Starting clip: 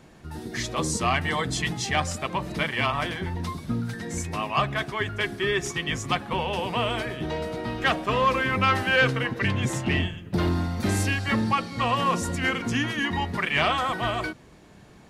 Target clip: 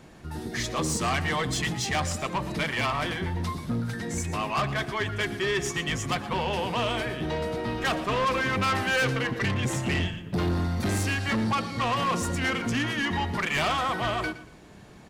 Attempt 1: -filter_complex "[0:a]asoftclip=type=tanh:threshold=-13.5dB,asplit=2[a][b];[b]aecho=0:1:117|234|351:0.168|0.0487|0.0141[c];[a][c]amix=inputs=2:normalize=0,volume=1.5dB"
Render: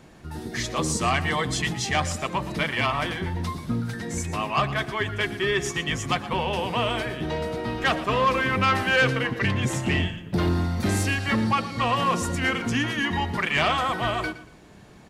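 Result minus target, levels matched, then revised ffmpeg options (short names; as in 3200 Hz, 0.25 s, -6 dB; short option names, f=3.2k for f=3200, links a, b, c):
soft clip: distortion -12 dB
-filter_complex "[0:a]asoftclip=type=tanh:threshold=-23dB,asplit=2[a][b];[b]aecho=0:1:117|234|351:0.168|0.0487|0.0141[c];[a][c]amix=inputs=2:normalize=0,volume=1.5dB"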